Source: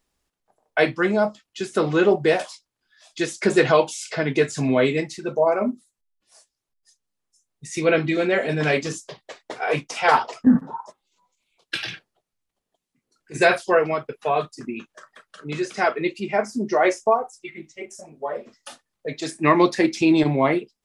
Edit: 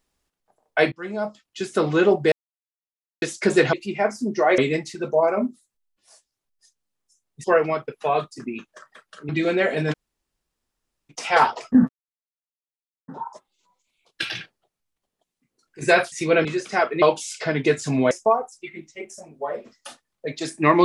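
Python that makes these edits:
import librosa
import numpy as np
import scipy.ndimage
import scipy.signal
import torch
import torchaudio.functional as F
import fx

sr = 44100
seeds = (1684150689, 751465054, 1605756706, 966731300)

y = fx.edit(x, sr, fx.fade_in_from(start_s=0.92, length_s=0.7, floor_db=-22.0),
    fx.silence(start_s=2.32, length_s=0.9),
    fx.swap(start_s=3.73, length_s=1.09, other_s=16.07, other_length_s=0.85),
    fx.swap(start_s=7.68, length_s=0.33, other_s=13.65, other_length_s=1.85),
    fx.room_tone_fill(start_s=8.65, length_s=1.17, crossfade_s=0.02),
    fx.insert_silence(at_s=10.61, length_s=1.19), tone=tone)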